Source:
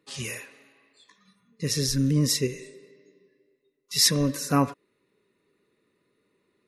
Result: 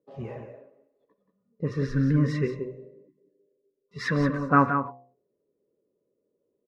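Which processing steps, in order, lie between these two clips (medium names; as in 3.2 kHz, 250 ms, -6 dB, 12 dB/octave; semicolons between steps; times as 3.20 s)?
de-hum 64.09 Hz, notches 19; gate -56 dBFS, range -10 dB; spectral selection erased 2.90–3.18 s, 380–820 Hz; delay 179 ms -8 dB; touch-sensitive low-pass 550–1500 Hz up, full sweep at -20.5 dBFS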